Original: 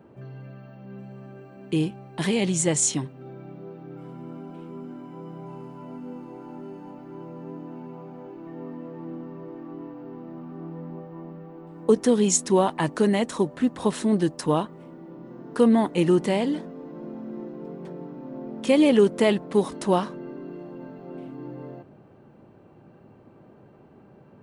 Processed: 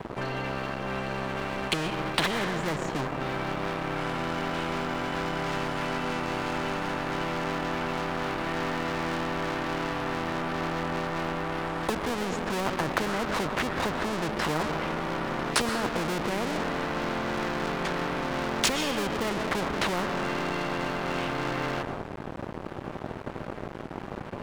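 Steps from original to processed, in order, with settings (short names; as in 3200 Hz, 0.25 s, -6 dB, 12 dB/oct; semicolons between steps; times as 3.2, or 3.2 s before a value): treble ducked by the level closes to 450 Hz, closed at -21 dBFS; in parallel at -2.5 dB: negative-ratio compressor -28 dBFS, ratio -0.5; 14.4–15.69 on the sum: doubler 13 ms -3 dB; on a send at -11 dB: reverb RT60 1.1 s, pre-delay 85 ms; on the sum: crossover distortion -43 dBFS; spectral compressor 4:1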